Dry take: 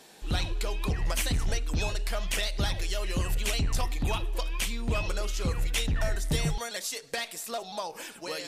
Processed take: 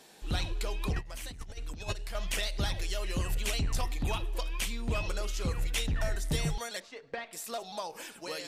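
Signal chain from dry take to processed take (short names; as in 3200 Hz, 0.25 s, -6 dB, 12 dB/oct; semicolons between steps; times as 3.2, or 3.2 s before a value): 0.96–2.15 negative-ratio compressor -33 dBFS, ratio -0.5; 6.8–7.33 LPF 1900 Hz 12 dB/oct; gain -3 dB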